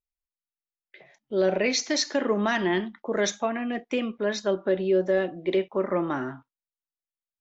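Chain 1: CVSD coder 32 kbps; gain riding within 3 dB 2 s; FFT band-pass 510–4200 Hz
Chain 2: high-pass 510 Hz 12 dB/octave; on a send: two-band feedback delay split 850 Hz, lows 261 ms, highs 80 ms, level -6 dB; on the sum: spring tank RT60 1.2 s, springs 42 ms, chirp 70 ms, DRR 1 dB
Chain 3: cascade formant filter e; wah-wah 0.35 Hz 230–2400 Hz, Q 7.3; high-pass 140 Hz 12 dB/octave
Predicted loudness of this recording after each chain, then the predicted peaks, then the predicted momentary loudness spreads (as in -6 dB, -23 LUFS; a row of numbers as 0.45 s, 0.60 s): -31.0 LUFS, -25.0 LUFS, -47.0 LUFS; -15.0 dBFS, -10.5 dBFS, -26.5 dBFS; 7 LU, 10 LU, 18 LU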